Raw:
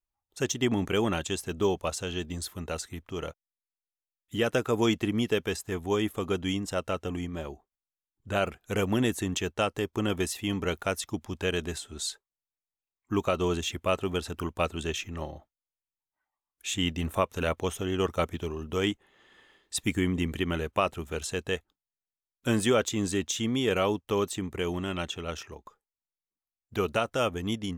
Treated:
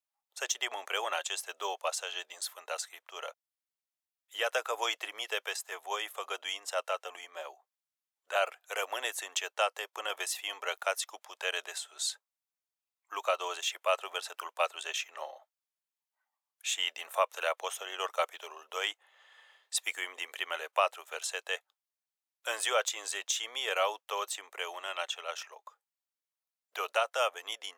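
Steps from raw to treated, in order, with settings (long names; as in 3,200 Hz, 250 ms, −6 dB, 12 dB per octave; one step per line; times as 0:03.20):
Butterworth high-pass 570 Hz 36 dB per octave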